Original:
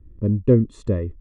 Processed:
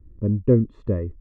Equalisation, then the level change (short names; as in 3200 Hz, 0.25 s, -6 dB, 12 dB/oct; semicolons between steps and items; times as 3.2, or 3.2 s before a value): LPF 1900 Hz 12 dB/oct; -1.5 dB